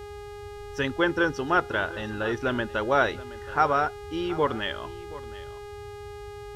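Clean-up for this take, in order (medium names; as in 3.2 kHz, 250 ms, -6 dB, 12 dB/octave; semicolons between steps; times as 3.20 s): de-hum 411.3 Hz, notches 34; noise print and reduce 30 dB; inverse comb 723 ms -17.5 dB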